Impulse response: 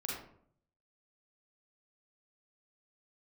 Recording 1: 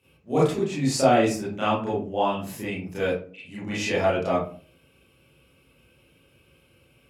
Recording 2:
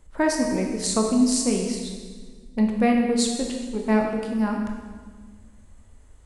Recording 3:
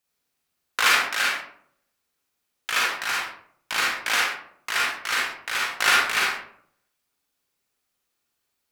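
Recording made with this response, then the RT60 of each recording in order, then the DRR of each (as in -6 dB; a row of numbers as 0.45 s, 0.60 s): 3; 0.45 s, 1.6 s, 0.60 s; -10.5 dB, 1.0 dB, -4.0 dB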